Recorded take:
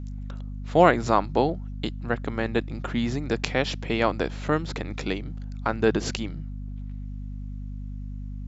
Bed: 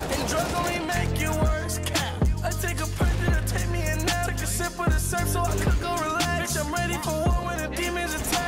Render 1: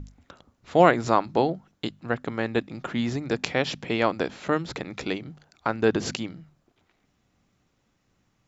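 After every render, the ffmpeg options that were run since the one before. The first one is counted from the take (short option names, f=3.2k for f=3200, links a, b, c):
-af "bandreject=f=50:t=h:w=6,bandreject=f=100:t=h:w=6,bandreject=f=150:t=h:w=6,bandreject=f=200:t=h:w=6,bandreject=f=250:t=h:w=6"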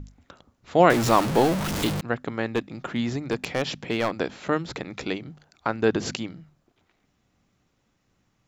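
-filter_complex "[0:a]asettb=1/sr,asplit=3[a][b][c];[a]atrim=end=0.904[d];[b]atrim=start=0.9:end=2.01,asetpts=PTS-STARTPTS,afade=t=in:d=0.004:c=qsin,afade=t=out:st=1.106:d=0.004:c=qsin,aeval=exprs='val(0)+0.5*0.0841*sgn(val(0))':c=same[e];[c]atrim=start=2.006[f];[d][e]acrossfade=d=0.004:c1=hsin:c2=qsin[g];[g][f]acrossfade=d=0.004:c1=qsin:c2=hsin,asettb=1/sr,asplit=3[h][i][j];[h]atrim=end=2.544[k];[i]atrim=start=2.54:end=4.12,asetpts=PTS-STARTPTS,afade=t=in:d=0.004:c=qsin,afade=t=out:st=1.576:d=0.004:c=qsin,volume=17.5dB,asoftclip=hard,volume=-17.5dB[l];[j]atrim=start=4.116[m];[k][l]acrossfade=d=0.004:c1=hsin:c2=qsin[n];[n][m]acrossfade=d=0.004:c1=qsin:c2=hsin"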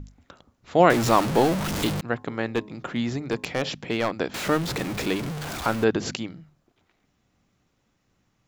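-filter_complex "[0:a]asettb=1/sr,asplit=3[a][b][c];[a]atrim=end=2.104[d];[b]atrim=start=2.1:end=3.69,asetpts=PTS-STARTPTS,afade=t=in:d=0.004:c=qsin,afade=t=out:st=1.586:d=0.004:c=qsin,bandreject=f=106.1:t=h:w=4,bandreject=f=212.2:t=h:w=4,bandreject=f=318.3:t=h:w=4,bandreject=f=424.4:t=h:w=4,bandreject=f=530.5:t=h:w=4,bandreject=f=636.6:t=h:w=4,bandreject=f=742.7:t=h:w=4,bandreject=f=848.8:t=h:w=4,bandreject=f=954.9:t=h:w=4,bandreject=f=1.061k:t=h:w=4[e];[c]atrim=start=3.686[f];[d][e]acrossfade=d=0.004:c1=hsin:c2=qsin[g];[g][f]acrossfade=d=0.004:c1=qsin:c2=hsin,asettb=1/sr,asplit=3[h][i][j];[h]atrim=end=4.344[k];[i]atrim=start=4.34:end=5.84,asetpts=PTS-STARTPTS,afade=t=in:d=0.004:c=qsin,afade=t=out:st=1.496:d=0.004:c=qsin,aeval=exprs='val(0)+0.5*0.0447*sgn(val(0))':c=same[l];[j]atrim=start=5.836[m];[k][l]acrossfade=d=0.004:c1=hsin:c2=qsin[n];[n][m]acrossfade=d=0.004:c1=qsin:c2=hsin"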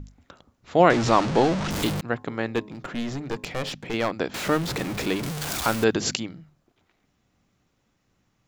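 -filter_complex "[0:a]asettb=1/sr,asplit=3[a][b][c];[a]atrim=end=0.764[d];[b]atrim=start=0.76:end=1.71,asetpts=PTS-STARTPTS,afade=t=in:d=0.004:c=qsin,afade=t=out:st=0.946:d=0.004:c=qsin,lowpass=f=6.8k:w=0.5412,lowpass=f=6.8k:w=1.3066[e];[c]atrim=start=1.706[f];[d][e]acrossfade=d=0.004:c1=hsin:c2=qsin[g];[g][f]acrossfade=d=0.004:c1=qsin:c2=hsin,asettb=1/sr,asplit=3[h][i][j];[h]atrim=end=2.634[k];[i]atrim=start=2.63:end=3.94,asetpts=PTS-STARTPTS,afade=t=in:d=0.004:c=qsin,afade=t=out:st=1.306:d=0.004:c=qsin,aeval=exprs='clip(val(0),-1,0.0266)':c=same[l];[j]atrim=start=3.936[m];[k][l]acrossfade=d=0.004:c1=hsin:c2=qsin[n];[n][m]acrossfade=d=0.004:c1=qsin:c2=hsin,asettb=1/sr,asplit=3[o][p][q];[o]atrim=end=5.234[r];[p]atrim=start=5.23:end=6.2,asetpts=PTS-STARTPTS,afade=t=in:d=0.004:c=qsin,afade=t=out:st=0.966:d=0.004:c=qsin,highshelf=f=3.6k:g=10[s];[q]atrim=start=6.196[t];[r][s]acrossfade=d=0.004:c1=hsin:c2=qsin[u];[u][t]acrossfade=d=0.004:c1=qsin:c2=hsin"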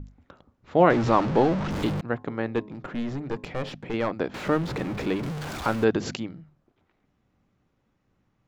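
-af "lowpass=f=1.5k:p=1,bandreject=f=690:w=22"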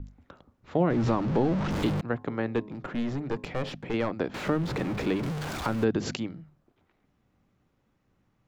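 -filter_complex "[0:a]acrossover=split=320[a][b];[b]acompressor=threshold=-27dB:ratio=6[c];[a][c]amix=inputs=2:normalize=0"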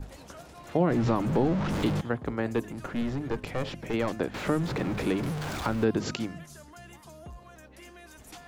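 -filter_complex "[1:a]volume=-22dB[a];[0:a][a]amix=inputs=2:normalize=0"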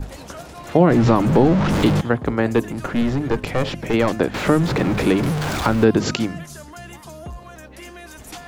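-af "volume=10.5dB"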